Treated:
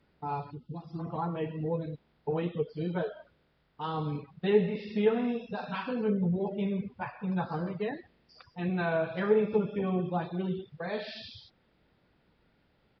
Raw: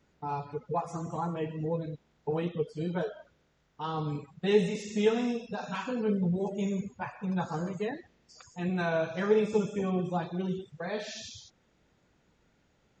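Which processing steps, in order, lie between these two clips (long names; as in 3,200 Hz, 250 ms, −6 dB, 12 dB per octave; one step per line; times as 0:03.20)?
gain on a spectral selection 0:00.51–0:00.99, 390–2,600 Hz −18 dB
downsampling to 11,025 Hz
treble cut that deepens with the level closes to 2,200 Hz, closed at −23.5 dBFS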